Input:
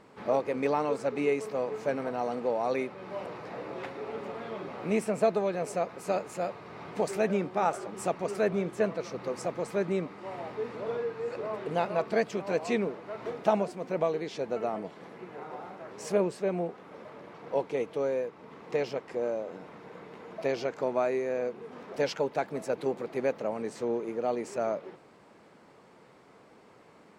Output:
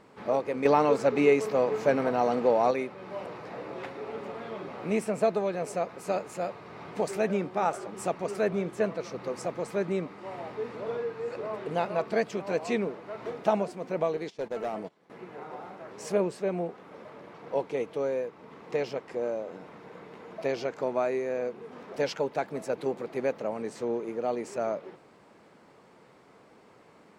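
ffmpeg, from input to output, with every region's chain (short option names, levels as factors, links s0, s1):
-filter_complex "[0:a]asettb=1/sr,asplit=3[s0][s1][s2];[s0]atrim=end=0.654[s3];[s1]atrim=start=0.65:end=2.71,asetpts=PTS-STARTPTS,afade=t=in:d=0.004:c=qsin,afade=t=out:st=2.056:d=0.004:c=qsin,equalizer=f=8900:w=4.9:g=-8,acontrast=57[s4];[s2]atrim=start=2.706[s5];[s3][s4]acrossfade=d=0.004:c1=hsin:c2=qsin[s6];[s6][s5]acrossfade=d=0.004:c1=qsin:c2=hsin,asettb=1/sr,asplit=3[s7][s8][s9];[s7]atrim=end=14.174[s10];[s8]atrim=start=14.17:end=15.1,asetpts=PTS-STARTPTS,afade=t=in:d=0.004:c=qsin,afade=t=out:st=0.926:d=0.004:c=qsin,agate=range=0.126:threshold=0.01:ratio=16:release=100:detection=peak,bass=f=250:g=-1,treble=f=4000:g=3,volume=22.4,asoftclip=hard,volume=0.0447[s11];[s9]atrim=start=15.096[s12];[s10][s11]acrossfade=d=0.004:c1=hsin:c2=qsin[s13];[s13][s12]acrossfade=d=0.004:c1=qsin:c2=hsin"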